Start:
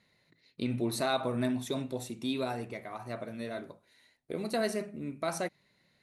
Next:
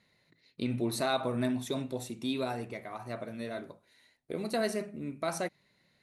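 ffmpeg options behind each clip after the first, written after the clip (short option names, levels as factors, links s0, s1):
-af anull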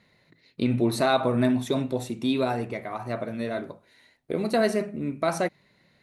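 -af "highshelf=f=3800:g=-7.5,volume=2.66"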